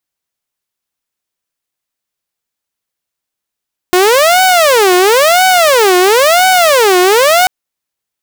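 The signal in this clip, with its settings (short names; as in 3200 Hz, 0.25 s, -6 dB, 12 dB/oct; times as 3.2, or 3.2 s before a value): siren wail 359–751 Hz 0.98/s saw -3 dBFS 3.54 s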